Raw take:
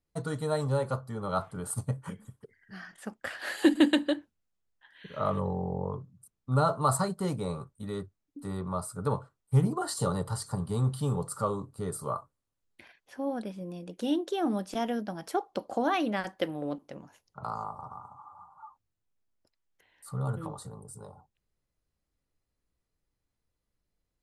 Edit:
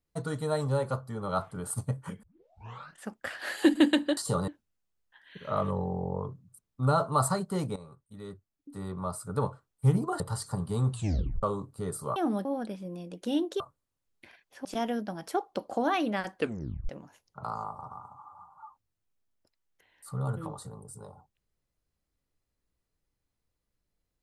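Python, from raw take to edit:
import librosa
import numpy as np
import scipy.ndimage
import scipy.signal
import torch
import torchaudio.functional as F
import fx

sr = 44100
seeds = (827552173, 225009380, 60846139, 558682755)

y = fx.edit(x, sr, fx.tape_start(start_s=2.23, length_s=0.77),
    fx.fade_in_from(start_s=7.45, length_s=1.54, floor_db=-15.0),
    fx.move(start_s=9.89, length_s=0.31, to_s=4.17),
    fx.tape_stop(start_s=10.92, length_s=0.51),
    fx.swap(start_s=12.16, length_s=1.05, other_s=14.36, other_length_s=0.29),
    fx.tape_stop(start_s=16.36, length_s=0.53), tone=tone)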